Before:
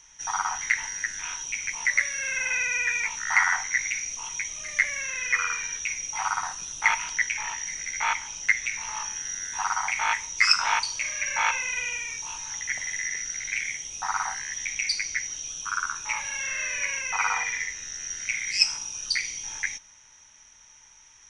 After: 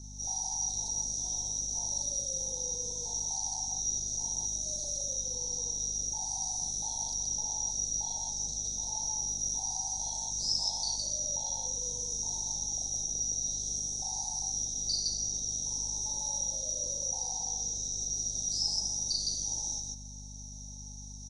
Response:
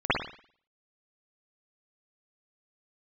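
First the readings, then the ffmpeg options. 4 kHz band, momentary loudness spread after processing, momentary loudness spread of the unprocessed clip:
-3.5 dB, 3 LU, 9 LU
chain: -filter_complex "[0:a]acrossover=split=3200[s0][s1];[s1]acompressor=threshold=0.0141:ratio=4:attack=1:release=60[s2];[s0][s2]amix=inputs=2:normalize=0,asuperstop=centerf=1800:order=20:qfactor=0.61,acrossover=split=230|3000[s3][s4][s5];[s4]acompressor=threshold=0.00631:ratio=6[s6];[s3][s6][s5]amix=inputs=3:normalize=0,asplit=2[s7][s8];[s8]aecho=0:1:37.9|163.3:0.891|0.891[s9];[s7][s9]amix=inputs=2:normalize=0,aeval=exprs='val(0)+0.00447*(sin(2*PI*50*n/s)+sin(2*PI*2*50*n/s)/2+sin(2*PI*3*50*n/s)/3+sin(2*PI*4*50*n/s)/4+sin(2*PI*5*50*n/s)/5)':c=same,acrossover=split=1800[s10][s11];[s10]alimiter=level_in=7.08:limit=0.0631:level=0:latency=1:release=28,volume=0.141[s12];[s12][s11]amix=inputs=2:normalize=0,volume=1.19"

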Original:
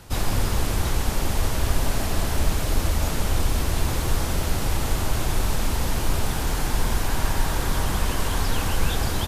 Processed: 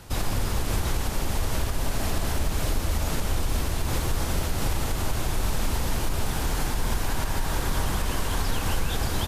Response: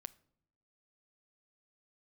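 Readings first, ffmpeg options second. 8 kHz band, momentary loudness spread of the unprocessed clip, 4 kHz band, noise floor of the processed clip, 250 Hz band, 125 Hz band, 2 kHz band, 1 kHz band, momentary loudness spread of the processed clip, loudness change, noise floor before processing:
-2.5 dB, 1 LU, -2.5 dB, -29 dBFS, -2.5 dB, -3.0 dB, -2.5 dB, -2.5 dB, 1 LU, -3.0 dB, -26 dBFS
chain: -af "alimiter=limit=0.168:level=0:latency=1:release=127"

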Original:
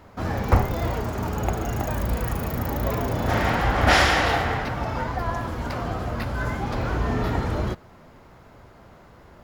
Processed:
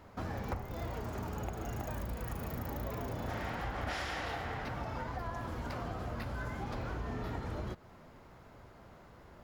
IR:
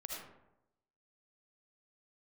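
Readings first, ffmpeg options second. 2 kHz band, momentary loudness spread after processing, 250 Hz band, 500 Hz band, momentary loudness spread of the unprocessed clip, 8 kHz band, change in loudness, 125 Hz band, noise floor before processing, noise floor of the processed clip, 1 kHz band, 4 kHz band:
-17.0 dB, 18 LU, -14.0 dB, -14.5 dB, 10 LU, -16.5 dB, -15.0 dB, -14.0 dB, -50 dBFS, -56 dBFS, -15.5 dB, -18.0 dB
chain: -af "acompressor=threshold=0.0355:ratio=6,volume=0.473"

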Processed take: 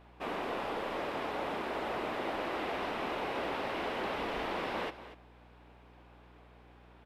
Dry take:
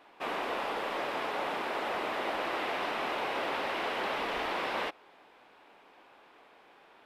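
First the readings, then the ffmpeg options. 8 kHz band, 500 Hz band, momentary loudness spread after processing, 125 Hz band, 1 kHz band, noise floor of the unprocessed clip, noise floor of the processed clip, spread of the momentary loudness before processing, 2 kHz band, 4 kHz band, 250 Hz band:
-5.0 dB, -1.0 dB, 3 LU, +5.5 dB, -3.0 dB, -59 dBFS, -58 dBFS, 1 LU, -4.5 dB, -4.5 dB, +1.5 dB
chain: -af "lowshelf=f=380:g=10.5,aecho=1:1:240:0.2,aeval=exprs='val(0)+0.00224*(sin(2*PI*60*n/s)+sin(2*PI*2*60*n/s)/2+sin(2*PI*3*60*n/s)/3+sin(2*PI*4*60*n/s)/4+sin(2*PI*5*60*n/s)/5)':c=same,volume=0.562"

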